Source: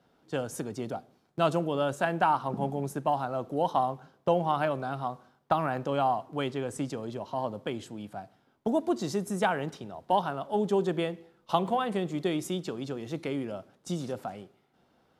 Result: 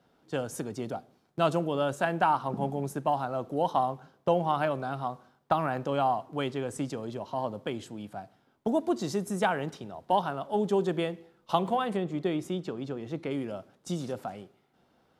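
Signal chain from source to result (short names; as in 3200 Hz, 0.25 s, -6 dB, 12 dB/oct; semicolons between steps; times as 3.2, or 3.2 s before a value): 11.96–13.31 high shelf 3900 Hz -11 dB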